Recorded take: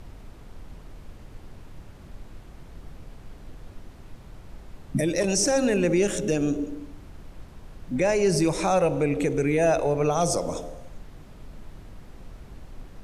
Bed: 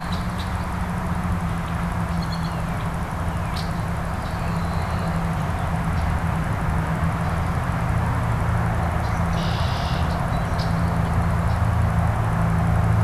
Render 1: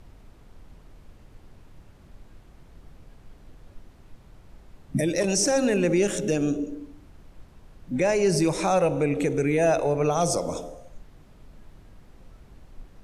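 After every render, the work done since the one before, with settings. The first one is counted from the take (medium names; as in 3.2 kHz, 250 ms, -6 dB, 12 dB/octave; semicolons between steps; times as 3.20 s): noise print and reduce 6 dB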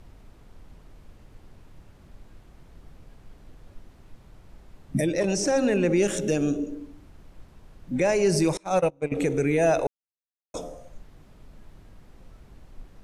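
5.05–5.97 s: low-pass 2.8 kHz -> 5 kHz 6 dB/octave; 8.57–9.12 s: gate -22 dBFS, range -30 dB; 9.87–10.54 s: mute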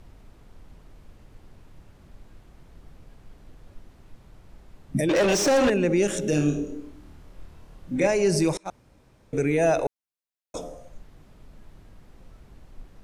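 5.09–5.70 s: overdrive pedal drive 25 dB, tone 3.3 kHz, clips at -13.5 dBFS; 6.30–8.07 s: flutter echo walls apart 4.6 m, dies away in 0.41 s; 8.70–9.33 s: room tone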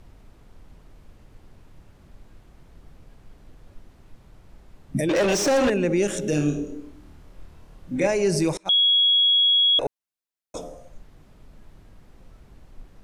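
8.69–9.79 s: bleep 3.33 kHz -15 dBFS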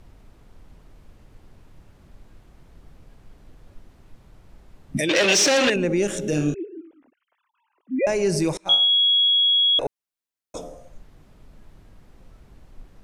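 4.97–5.76 s: frequency weighting D; 6.54–8.07 s: formants replaced by sine waves; 8.61–9.28 s: flutter echo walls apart 3.1 m, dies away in 0.48 s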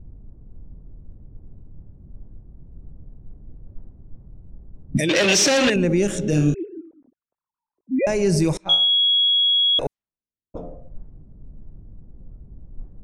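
level-controlled noise filter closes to 340 Hz, open at -21 dBFS; tone controls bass +8 dB, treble +1 dB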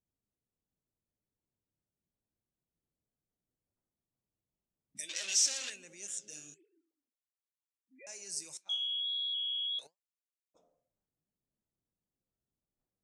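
band-pass filter 7.6 kHz, Q 2.2; flange 1.5 Hz, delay 4.1 ms, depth 6.7 ms, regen +76%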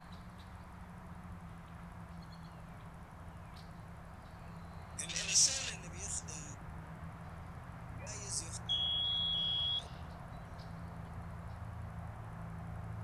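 add bed -25.5 dB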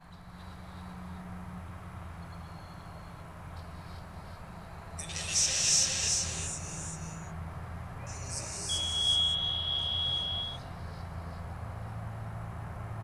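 delay 392 ms -3.5 dB; gated-style reverb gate 400 ms rising, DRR -3 dB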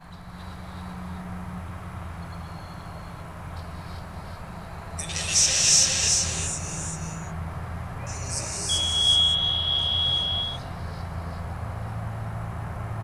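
trim +7.5 dB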